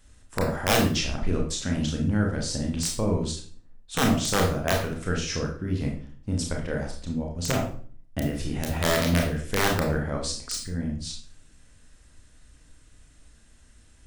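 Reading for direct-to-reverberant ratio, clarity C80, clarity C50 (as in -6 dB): 0.0 dB, 10.0 dB, 5.0 dB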